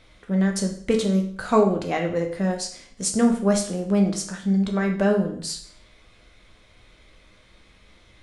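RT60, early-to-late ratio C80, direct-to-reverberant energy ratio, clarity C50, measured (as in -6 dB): 0.60 s, 12.0 dB, 2.0 dB, 8.0 dB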